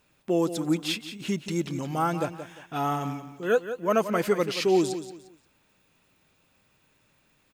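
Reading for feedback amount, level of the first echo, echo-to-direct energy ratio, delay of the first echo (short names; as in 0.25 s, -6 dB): 29%, -11.0 dB, -10.5 dB, 0.176 s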